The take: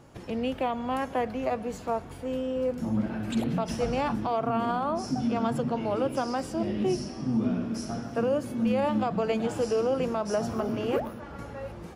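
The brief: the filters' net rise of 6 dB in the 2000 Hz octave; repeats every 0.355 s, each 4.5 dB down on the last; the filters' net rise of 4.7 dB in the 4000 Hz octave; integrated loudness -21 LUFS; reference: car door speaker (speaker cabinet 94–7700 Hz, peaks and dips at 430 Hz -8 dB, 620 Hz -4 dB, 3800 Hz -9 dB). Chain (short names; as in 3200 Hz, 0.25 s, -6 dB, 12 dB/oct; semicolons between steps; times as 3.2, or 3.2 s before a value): speaker cabinet 94–7700 Hz, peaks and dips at 430 Hz -8 dB, 620 Hz -4 dB, 3800 Hz -9 dB; bell 2000 Hz +6.5 dB; bell 4000 Hz +8 dB; feedback echo 0.355 s, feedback 60%, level -4.5 dB; gain +7.5 dB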